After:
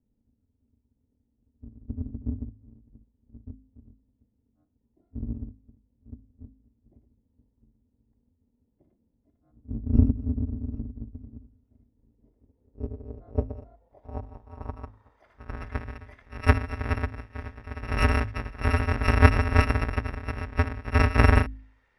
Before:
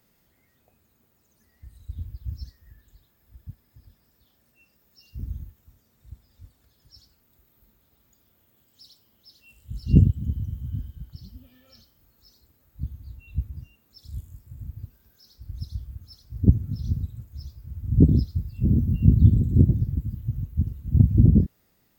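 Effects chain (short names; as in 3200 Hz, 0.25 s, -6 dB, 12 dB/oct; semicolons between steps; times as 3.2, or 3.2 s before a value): FFT order left unsorted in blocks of 256 samples; low-pass sweep 240 Hz -> 1800 Hz, 11.87–15.81; de-hum 52.39 Hz, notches 6; gain +2.5 dB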